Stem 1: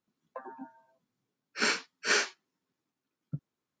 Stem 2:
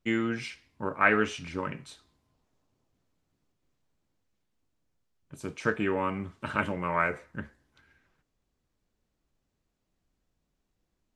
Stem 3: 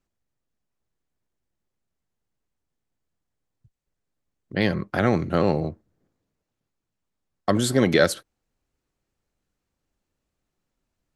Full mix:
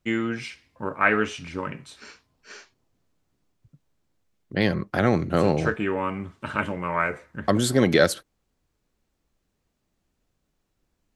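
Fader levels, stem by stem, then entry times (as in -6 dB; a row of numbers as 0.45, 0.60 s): -18.0, +2.5, 0.0 dB; 0.40, 0.00, 0.00 s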